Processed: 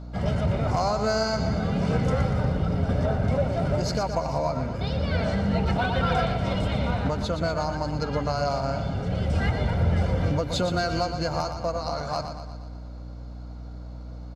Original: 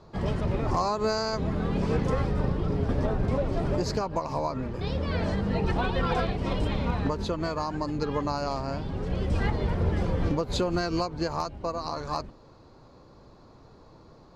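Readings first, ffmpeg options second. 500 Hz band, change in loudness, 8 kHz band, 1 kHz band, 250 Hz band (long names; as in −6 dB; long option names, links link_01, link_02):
+2.5 dB, +3.0 dB, can't be measured, +2.5 dB, +1.5 dB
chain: -filter_complex "[0:a]highpass=76,bandreject=frequency=850:width=12,aecho=1:1:1.4:0.56,aeval=exprs='val(0)+0.0112*(sin(2*PI*60*n/s)+sin(2*PI*2*60*n/s)/2+sin(2*PI*3*60*n/s)/3+sin(2*PI*4*60*n/s)/4+sin(2*PI*5*60*n/s)/5)':channel_layout=same,asplit=2[link_01][link_02];[link_02]asoftclip=type=hard:threshold=-25dB,volume=-11.5dB[link_03];[link_01][link_03]amix=inputs=2:normalize=0,aecho=1:1:119|238|357|476|595|714|833:0.376|0.207|0.114|0.0625|0.0344|0.0189|0.0104"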